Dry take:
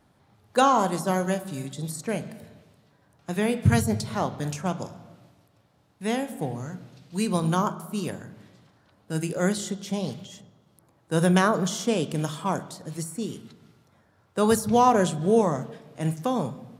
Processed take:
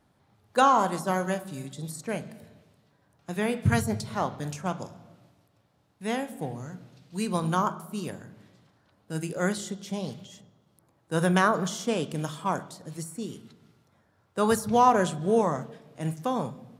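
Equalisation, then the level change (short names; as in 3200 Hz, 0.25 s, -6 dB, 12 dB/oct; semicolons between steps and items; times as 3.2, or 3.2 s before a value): dynamic EQ 1300 Hz, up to +5 dB, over -34 dBFS, Q 0.73; -4.0 dB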